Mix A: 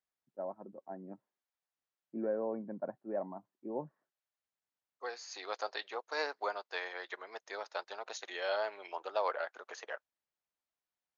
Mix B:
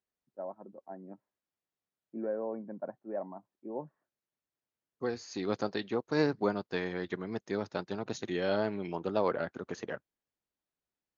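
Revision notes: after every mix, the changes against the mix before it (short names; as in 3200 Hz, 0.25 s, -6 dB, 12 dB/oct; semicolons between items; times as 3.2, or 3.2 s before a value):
second voice: remove HPF 600 Hz 24 dB/oct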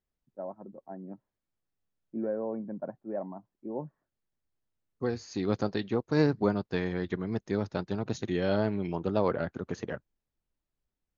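master: remove HPF 370 Hz 6 dB/oct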